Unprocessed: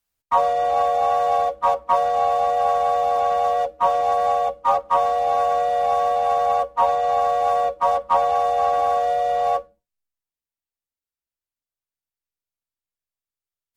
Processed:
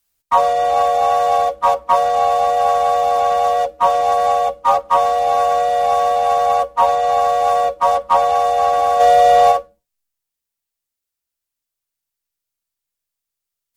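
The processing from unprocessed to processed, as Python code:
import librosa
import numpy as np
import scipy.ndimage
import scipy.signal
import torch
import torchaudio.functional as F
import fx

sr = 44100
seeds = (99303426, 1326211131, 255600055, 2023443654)

y = fx.high_shelf(x, sr, hz=3500.0, db=7.0)
y = fx.env_flatten(y, sr, amount_pct=100, at=(8.99, 9.51), fade=0.02)
y = y * 10.0 ** (4.0 / 20.0)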